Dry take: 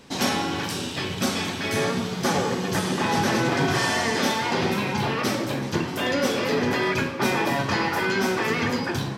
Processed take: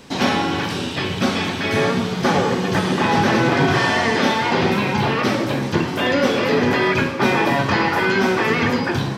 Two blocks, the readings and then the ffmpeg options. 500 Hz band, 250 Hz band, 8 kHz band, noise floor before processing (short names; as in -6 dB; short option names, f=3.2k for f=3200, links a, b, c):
+6.0 dB, +6.0 dB, -2.5 dB, -31 dBFS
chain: -filter_complex "[0:a]acrossover=split=4400[a][b];[b]acompressor=threshold=-47dB:ratio=4:attack=1:release=60[c];[a][c]amix=inputs=2:normalize=0,volume=6dB"